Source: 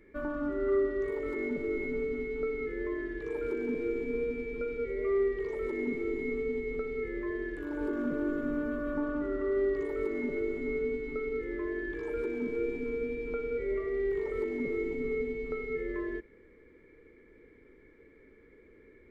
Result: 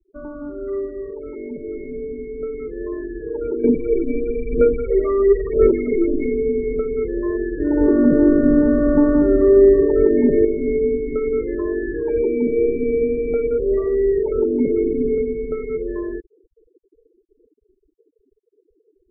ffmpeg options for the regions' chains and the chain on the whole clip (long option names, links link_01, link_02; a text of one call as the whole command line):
ffmpeg -i in.wav -filter_complex "[0:a]asettb=1/sr,asplit=3[link_01][link_02][link_03];[link_01]atrim=end=3.644[link_04];[link_02]atrim=start=3.64:end=6.26,asetpts=PTS-STARTPTS,afade=type=in:duration=0.004:curve=qsin,afade=type=out:start_time=2.616:duration=0.004:curve=qsin,aphaser=in_gain=1:out_gain=1:delay=3.5:decay=0.67:speed=1:type=sinusoidal,asuperstop=centerf=780:order=4:qfactor=3.1[link_05];[link_03]atrim=start=6.256[link_06];[link_04][link_05]acrossfade=duration=0.004:curve1=hsin:curve2=qsin[link_07];[link_07][link_06]acrossfade=duration=0.004:curve1=qsin:curve2=hsin,asettb=1/sr,asplit=3[link_08][link_09][link_10];[link_08]atrim=end=7.604[link_11];[link_09]atrim=start=7.6:end=10.45,asetpts=PTS-STARTPTS,afade=type=in:duration=0.004:curve=qsin,afade=type=out:start_time=2.846:duration=0.004:curve=qsin,tiltshelf=frequency=1200:gain=6,aeval=exprs='val(0)+0.00501*sin(2*PI*1800*n/s)':channel_layout=same,acrusher=bits=7:mix=0:aa=0.5[link_12];[link_10]atrim=start=10.446[link_13];[link_11][link_12]acrossfade=duration=0.004:curve1=hsin:curve2=qsin[link_14];[link_14][link_13]acrossfade=duration=0.004:curve1=qsin:curve2=hsin,asettb=1/sr,asplit=3[link_15][link_16][link_17];[link_15]atrim=end=11.244[link_18];[link_16]atrim=start=11.24:end=13.47,asetpts=PTS-STARTPTS,afade=type=in:duration=0.004:curve=qsin,afade=type=out:start_time=2.226:duration=0.004:curve=qsin,highshelf=frequency=3100:gain=8.5,bandreject=frequency=1400:width=22,asplit=2[link_19][link_20];[link_20]adelay=13,volume=-13dB[link_21];[link_19][link_21]amix=inputs=2:normalize=0,atrim=end_sample=98343[link_22];[link_17]atrim=start=13.466[link_23];[link_18][link_22]acrossfade=duration=0.004:curve1=hsin:curve2=qsin[link_24];[link_24][link_23]acrossfade=duration=0.004:curve1=qsin:curve2=hsin,asettb=1/sr,asplit=3[link_25][link_26][link_27];[link_25]atrim=end=14.364[link_28];[link_26]atrim=start=14.36:end=15.18,asetpts=PTS-STARTPTS,afade=type=in:duration=0.004:curve=qsin,afade=type=out:start_time=0.816:duration=0.004:curve=qsin,lowpass=2100,equalizer=frequency=280:width_type=o:width=0.63:gain=4.5[link_29];[link_27]atrim=start=15.176[link_30];[link_28][link_29]acrossfade=duration=0.004:curve1=hsin:curve2=qsin[link_31];[link_31][link_30]acrossfade=duration=0.004:curve1=qsin:curve2=hsin,lowpass=1100,afftfilt=real='re*gte(hypot(re,im),0.01)':imag='im*gte(hypot(re,im),0.01)':win_size=1024:overlap=0.75,dynaudnorm=framelen=220:gausssize=31:maxgain=12dB,volume=2dB" out.wav